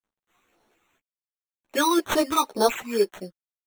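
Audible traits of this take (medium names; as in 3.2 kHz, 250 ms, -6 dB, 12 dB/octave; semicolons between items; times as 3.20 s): a quantiser's noise floor 12-bit, dither none; phasing stages 12, 2 Hz, lowest notch 520–3100 Hz; aliases and images of a low sample rate 4.9 kHz, jitter 0%; a shimmering, thickened sound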